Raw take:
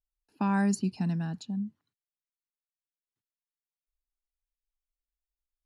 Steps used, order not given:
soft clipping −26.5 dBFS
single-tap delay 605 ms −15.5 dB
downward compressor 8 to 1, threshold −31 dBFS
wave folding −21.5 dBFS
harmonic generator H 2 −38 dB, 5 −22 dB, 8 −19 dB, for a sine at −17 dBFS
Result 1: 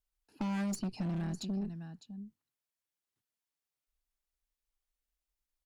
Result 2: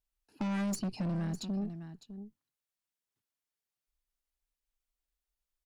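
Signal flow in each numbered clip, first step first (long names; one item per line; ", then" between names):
wave folding, then single-tap delay, then harmonic generator, then downward compressor, then soft clipping
harmonic generator, then single-tap delay, then wave folding, then soft clipping, then downward compressor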